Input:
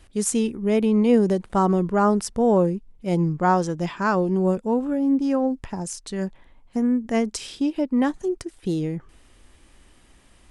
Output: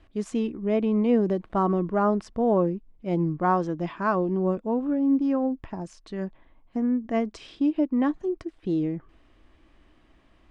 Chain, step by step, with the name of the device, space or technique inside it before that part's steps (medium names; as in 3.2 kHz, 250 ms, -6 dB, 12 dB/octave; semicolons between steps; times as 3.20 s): inside a cardboard box (low-pass 3.2 kHz 12 dB/octave; small resonant body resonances 310/650/1100 Hz, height 7 dB); trim -5 dB